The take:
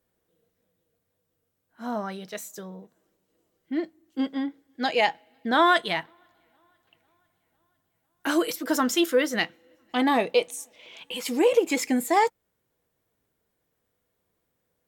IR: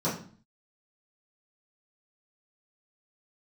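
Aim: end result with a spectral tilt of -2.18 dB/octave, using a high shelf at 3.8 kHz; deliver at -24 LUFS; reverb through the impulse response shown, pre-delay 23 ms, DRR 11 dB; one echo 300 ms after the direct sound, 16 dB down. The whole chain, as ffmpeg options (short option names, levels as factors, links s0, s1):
-filter_complex "[0:a]highshelf=f=3800:g=-4,aecho=1:1:300:0.158,asplit=2[s0][s1];[1:a]atrim=start_sample=2205,adelay=23[s2];[s1][s2]afir=irnorm=-1:irlink=0,volume=0.0891[s3];[s0][s3]amix=inputs=2:normalize=0,volume=1.12"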